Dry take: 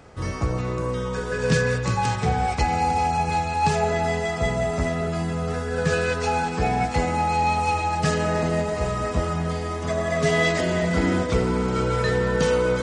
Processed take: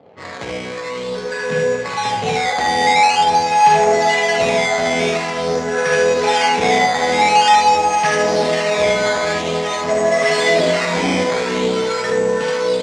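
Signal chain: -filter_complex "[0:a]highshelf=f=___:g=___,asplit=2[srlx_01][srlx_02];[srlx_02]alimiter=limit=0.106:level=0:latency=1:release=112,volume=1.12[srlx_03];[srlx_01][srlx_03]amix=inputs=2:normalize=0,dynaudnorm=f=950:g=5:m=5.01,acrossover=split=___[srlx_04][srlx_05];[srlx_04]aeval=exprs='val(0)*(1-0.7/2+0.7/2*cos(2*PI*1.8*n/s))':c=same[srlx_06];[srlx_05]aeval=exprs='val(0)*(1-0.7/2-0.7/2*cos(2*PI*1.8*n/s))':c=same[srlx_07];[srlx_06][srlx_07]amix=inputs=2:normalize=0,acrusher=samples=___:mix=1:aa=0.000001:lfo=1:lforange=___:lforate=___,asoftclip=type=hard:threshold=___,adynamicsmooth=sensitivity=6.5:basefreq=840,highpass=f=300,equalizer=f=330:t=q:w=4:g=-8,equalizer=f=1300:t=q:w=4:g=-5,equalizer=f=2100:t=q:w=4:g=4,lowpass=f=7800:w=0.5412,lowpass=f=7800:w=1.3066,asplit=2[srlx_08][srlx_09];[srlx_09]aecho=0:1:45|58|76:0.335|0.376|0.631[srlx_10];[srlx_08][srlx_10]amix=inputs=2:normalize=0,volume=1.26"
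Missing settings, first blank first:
3600, -11, 800, 11, 11, 0.47, 0.299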